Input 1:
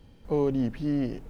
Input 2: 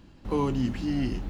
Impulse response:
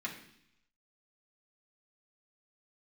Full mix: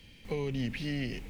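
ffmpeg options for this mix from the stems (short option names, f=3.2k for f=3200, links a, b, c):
-filter_complex "[0:a]highshelf=f=1.6k:t=q:w=3:g=11.5,volume=-4dB[a];[1:a]volume=-12dB[b];[a][b]amix=inputs=2:normalize=0,acrossover=split=160[c][d];[d]acompressor=threshold=-32dB:ratio=6[e];[c][e]amix=inputs=2:normalize=0"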